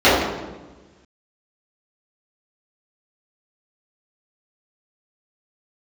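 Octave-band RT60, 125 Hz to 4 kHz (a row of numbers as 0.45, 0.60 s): 1.7, 1.5, 1.3, 1.1, 0.95, 0.90 s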